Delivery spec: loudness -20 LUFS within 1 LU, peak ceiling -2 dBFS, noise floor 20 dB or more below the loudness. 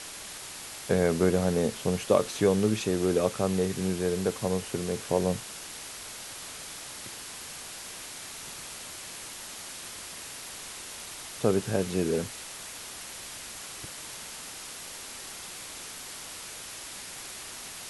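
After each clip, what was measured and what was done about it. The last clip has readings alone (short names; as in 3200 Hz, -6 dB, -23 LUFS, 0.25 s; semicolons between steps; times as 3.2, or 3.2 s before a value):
noise floor -42 dBFS; noise floor target -52 dBFS; loudness -31.5 LUFS; peak -7.5 dBFS; loudness target -20.0 LUFS
-> denoiser 10 dB, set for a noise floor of -42 dBFS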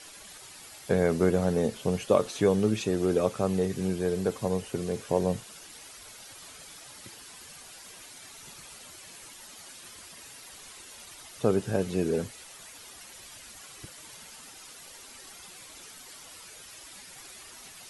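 noise floor -48 dBFS; loudness -28.0 LUFS; peak -7.5 dBFS; loudness target -20.0 LUFS
-> gain +8 dB; limiter -2 dBFS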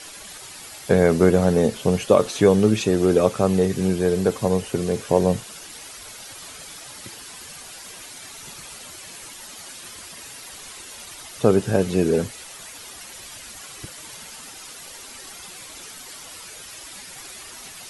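loudness -20.0 LUFS; peak -2.0 dBFS; noise floor -40 dBFS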